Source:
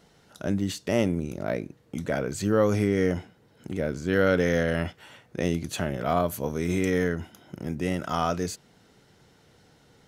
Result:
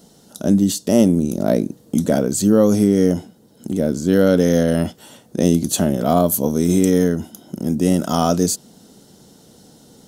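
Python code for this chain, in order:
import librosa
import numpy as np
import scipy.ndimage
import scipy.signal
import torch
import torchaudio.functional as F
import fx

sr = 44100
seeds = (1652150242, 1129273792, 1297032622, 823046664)

p1 = fx.curve_eq(x, sr, hz=(120.0, 220.0, 400.0, 630.0, 2300.0, 3200.0, 9200.0), db=(0, 12, 5, 5, -8, 3, 14))
p2 = fx.rider(p1, sr, range_db=4, speed_s=0.5)
p3 = p1 + (p2 * 10.0 ** (3.0 / 20.0))
y = p3 * 10.0 ** (-4.0 / 20.0)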